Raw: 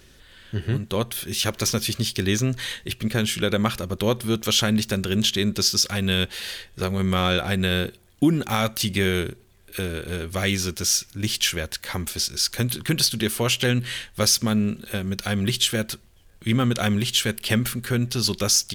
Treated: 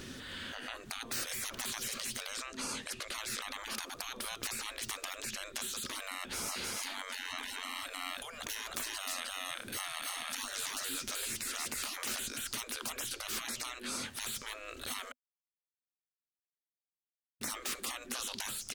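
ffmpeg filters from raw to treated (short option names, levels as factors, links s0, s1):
-filter_complex "[0:a]asettb=1/sr,asplit=3[s0][s1][s2];[s0]atrim=end=2.344[s3];[s1]atrim=start=2.34:end=3.13,asetpts=PTS-STARTPTS,afade=t=in:d=0.004:c=qsin,afade=t=out:st=0.786:d=0.004:c=qsin,lowpass=11000[s4];[s2]atrim=start=3.126[s5];[s3][s4]acrossfade=d=0.004:c1=hsin:c2=qsin[s6];[s6][s5]acrossfade=d=0.004:c1=qsin:c2=hsin,asplit=3[s7][s8][s9];[s7]afade=t=out:st=6.49:d=0.02[s10];[s8]aecho=1:1:309:0.668,afade=t=in:st=6.49:d=0.02,afade=t=out:st=12.1:d=0.02[s11];[s9]afade=t=in:st=12.1:d=0.02[s12];[s10][s11][s12]amix=inputs=3:normalize=0,asplit=3[s13][s14][s15];[s13]atrim=end=15.12,asetpts=PTS-STARTPTS,afade=t=out:st=15.116:d=0.004:c=hsin[s16];[s14]atrim=start=15.12:end=17.41,asetpts=PTS-STARTPTS,volume=0[s17];[s15]atrim=start=17.41,asetpts=PTS-STARTPTS,afade=t=in:d=0.004:c=hsin[s18];[s16][s17][s18]concat=n=3:v=0:a=1,acompressor=threshold=0.0398:ratio=12,afftfilt=real='re*lt(hypot(re,im),0.0178)':imag='im*lt(hypot(re,im),0.0178)':win_size=1024:overlap=0.75,equalizer=f=250:t=o:w=0.33:g=11,equalizer=f=1250:t=o:w=0.33:g=4,equalizer=f=12500:t=o:w=0.33:g=-8,volume=2"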